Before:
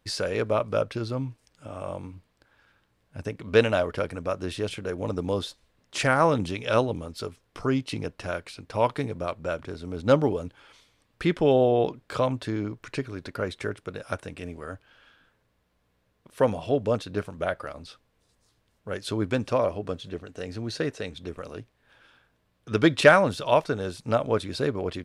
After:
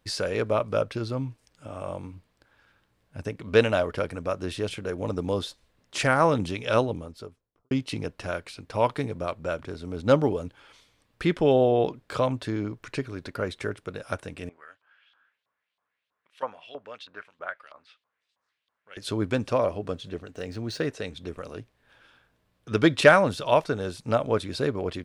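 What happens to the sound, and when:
6.74–7.71 studio fade out
14.49–18.97 LFO band-pass saw up 3.1 Hz 960–3800 Hz
20.28–20.87 median filter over 3 samples

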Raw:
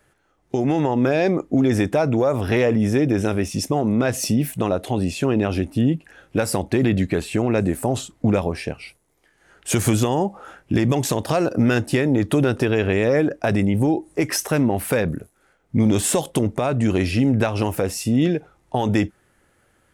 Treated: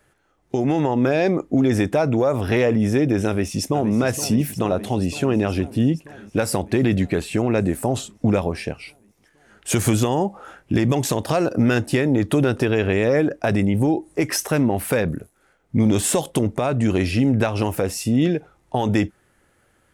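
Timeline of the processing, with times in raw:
3.27–3.94 echo throw 0.47 s, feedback 75%, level -12.5 dB

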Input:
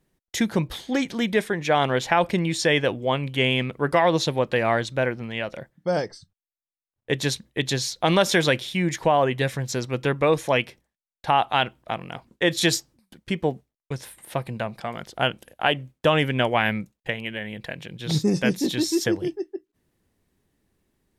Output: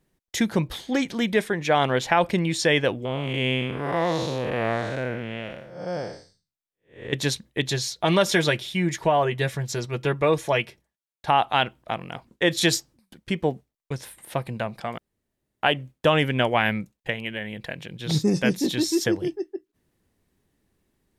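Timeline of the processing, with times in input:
3.05–7.13 time blur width 0.231 s
7.68–11.28 notch comb 260 Hz
14.98–15.63 room tone

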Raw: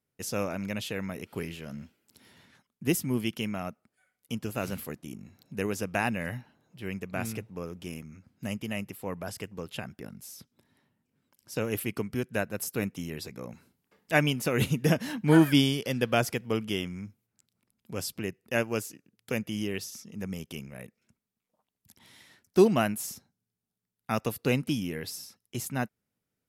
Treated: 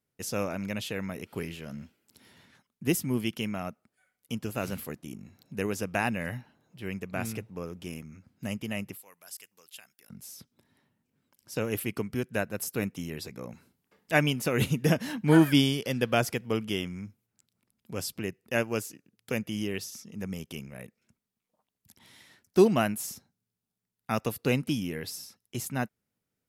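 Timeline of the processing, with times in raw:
8.97–10.1 differentiator

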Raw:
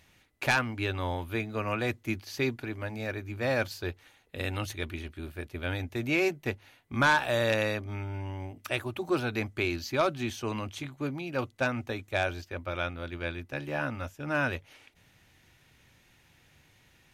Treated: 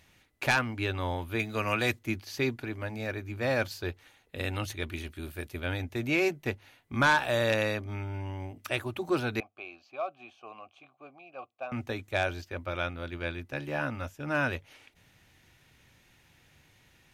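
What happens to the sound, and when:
1.39–1.99 high shelf 2100 Hz +9.5 dB
4.92–5.6 high shelf 4900 Hz +9.5 dB
9.4–11.72 vowel filter a

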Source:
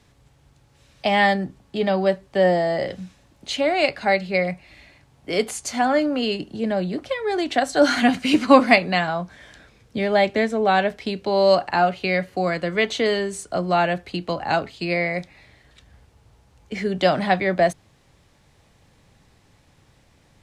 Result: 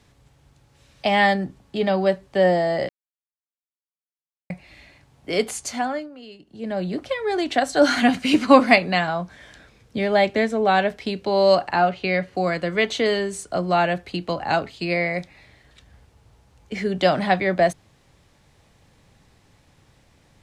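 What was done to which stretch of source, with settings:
2.89–4.5 mute
5.62–6.92 dip -18.5 dB, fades 0.47 s
11.73–12.35 air absorption 60 m

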